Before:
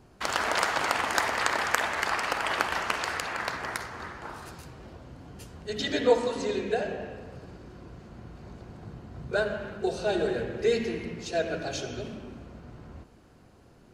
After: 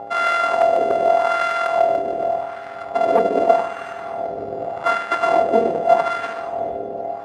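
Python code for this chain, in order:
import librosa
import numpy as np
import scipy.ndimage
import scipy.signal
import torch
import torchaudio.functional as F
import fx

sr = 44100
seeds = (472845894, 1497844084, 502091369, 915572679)

p1 = np.r_[np.sort(x[:len(x) // 64 * 64].reshape(-1, 64), axis=1).ravel(), x[len(x) // 64 * 64:]]
p2 = scipy.signal.sosfilt(scipy.signal.cheby1(6, 1.0, 11000.0, 'lowpass', fs=sr, output='sos'), p1)
p3 = fx.peak_eq(p2, sr, hz=560.0, db=2.0, octaves=1.4)
p4 = fx.rider(p3, sr, range_db=4, speed_s=2.0)
p5 = p3 + (p4 * 10.0 ** (-1.0 / 20.0))
p6 = fx.fold_sine(p5, sr, drive_db=13, ceiling_db=1.0)
p7 = fx.dmg_buzz(p6, sr, base_hz=100.0, harmonics=8, level_db=-21.0, tilt_db=-1, odd_only=False)
p8 = p7 + fx.echo_diffused(p7, sr, ms=693, feedback_pct=65, wet_db=-12.0, dry=0)
p9 = fx.stretch_grains(p8, sr, factor=0.52, grain_ms=49.0)
p10 = fx.wah_lfo(p9, sr, hz=0.84, low_hz=450.0, high_hz=1500.0, q=2.1)
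y = p10 * 10.0 ** (-3.5 / 20.0)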